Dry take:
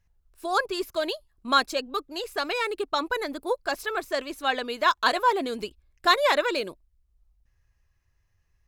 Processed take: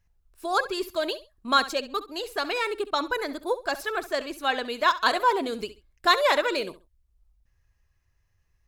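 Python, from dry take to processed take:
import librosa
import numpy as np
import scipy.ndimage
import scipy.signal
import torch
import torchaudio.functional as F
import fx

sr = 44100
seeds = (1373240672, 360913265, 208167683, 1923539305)

y = fx.echo_feedback(x, sr, ms=67, feedback_pct=23, wet_db=-15.0)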